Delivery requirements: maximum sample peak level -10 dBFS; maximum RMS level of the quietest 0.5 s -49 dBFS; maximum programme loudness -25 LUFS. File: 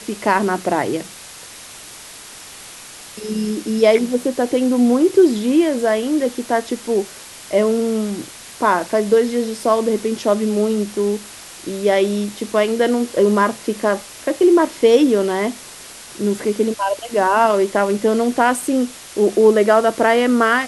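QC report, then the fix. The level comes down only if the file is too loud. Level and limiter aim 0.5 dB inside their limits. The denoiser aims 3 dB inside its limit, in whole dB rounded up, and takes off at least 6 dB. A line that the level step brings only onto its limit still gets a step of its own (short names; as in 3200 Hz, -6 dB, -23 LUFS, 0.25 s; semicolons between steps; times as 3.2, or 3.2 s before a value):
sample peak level -1.5 dBFS: fail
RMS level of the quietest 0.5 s -38 dBFS: fail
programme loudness -17.5 LUFS: fail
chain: denoiser 6 dB, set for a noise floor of -38 dBFS; gain -8 dB; limiter -10.5 dBFS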